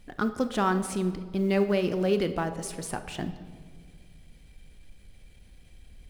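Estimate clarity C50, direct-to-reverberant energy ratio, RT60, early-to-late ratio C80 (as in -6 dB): 11.0 dB, 9.0 dB, 1.8 s, 13.0 dB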